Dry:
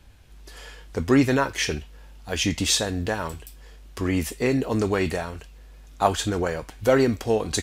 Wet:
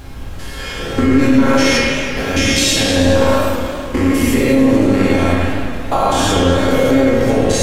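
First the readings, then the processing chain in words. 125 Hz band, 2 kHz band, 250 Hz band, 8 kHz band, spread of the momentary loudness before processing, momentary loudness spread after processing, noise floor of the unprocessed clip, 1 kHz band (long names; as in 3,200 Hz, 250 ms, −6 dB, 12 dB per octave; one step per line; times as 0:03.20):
+10.0 dB, +11.5 dB, +12.5 dB, +8.0 dB, 16 LU, 10 LU, −46 dBFS, +10.0 dB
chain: spectrum averaged block by block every 200 ms
downward compressor, threshold −29 dBFS, peak gain reduction 11.5 dB
tuned comb filter 270 Hz, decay 0.5 s, harmonics all, mix 90%
background noise brown −63 dBFS
spring reverb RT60 1.8 s, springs 34/46 ms, chirp 75 ms, DRR −1.5 dB
boost into a limiter +35 dB
feedback echo with a swinging delay time 108 ms, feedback 74%, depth 192 cents, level −10.5 dB
level −3.5 dB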